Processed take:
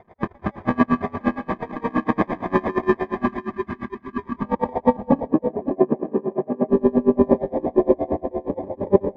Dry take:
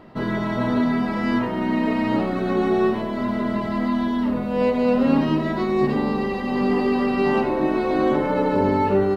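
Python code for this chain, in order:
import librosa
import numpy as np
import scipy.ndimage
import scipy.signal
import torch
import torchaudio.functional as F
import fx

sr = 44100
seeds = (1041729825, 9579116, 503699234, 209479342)

y = fx.spec_dropout(x, sr, seeds[0], share_pct=53)
y = fx.sample_hold(y, sr, seeds[1], rate_hz=1400.0, jitter_pct=0)
y = fx.bandpass_edges(y, sr, low_hz=200.0, high_hz=2500.0, at=(5.25, 6.69))
y = y + 10.0 ** (-9.5 / 20.0) * np.pad(y, (int(549 * sr / 1000.0), 0))[:len(y)]
y = fx.spec_box(y, sr, start_s=3.27, length_s=1.17, low_hz=430.0, high_hz=900.0, gain_db=-13)
y = fx.echo_feedback(y, sr, ms=162, feedback_pct=60, wet_db=-11.5)
y = fx.filter_sweep_lowpass(y, sr, from_hz=1400.0, to_hz=590.0, start_s=4.09, end_s=5.47, q=2.0)
y = y * 10.0 ** (-28 * (0.5 - 0.5 * np.cos(2.0 * np.pi * 8.6 * np.arange(len(y)) / sr)) / 20.0)
y = F.gain(torch.from_numpy(y), 6.0).numpy()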